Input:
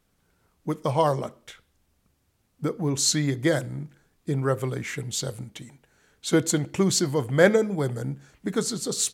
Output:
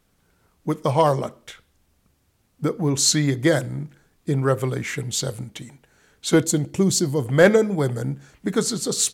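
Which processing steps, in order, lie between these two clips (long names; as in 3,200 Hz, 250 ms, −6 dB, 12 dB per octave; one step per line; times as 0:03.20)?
0:06.44–0:07.26: parametric band 1,600 Hz −9.5 dB 2.5 octaves
in parallel at −4 dB: hard clipping −13.5 dBFS, distortion −18 dB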